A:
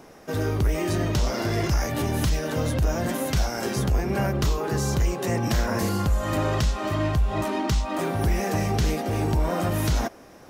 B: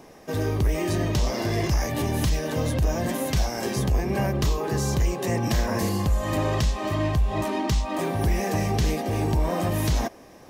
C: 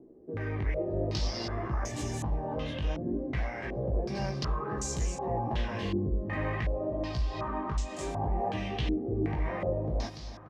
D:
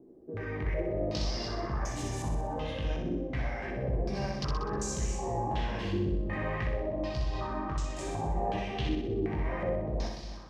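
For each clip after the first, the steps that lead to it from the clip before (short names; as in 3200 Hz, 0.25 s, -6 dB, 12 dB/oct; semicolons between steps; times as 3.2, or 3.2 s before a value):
notch 1400 Hz, Q 6.2
chorus 0.57 Hz, delay 15.5 ms, depth 5.4 ms; feedback echo 0.292 s, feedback 49%, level -12 dB; stepped low-pass 2.7 Hz 360–7400 Hz; gain -7.5 dB
flutter echo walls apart 10.7 m, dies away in 0.8 s; gain -2 dB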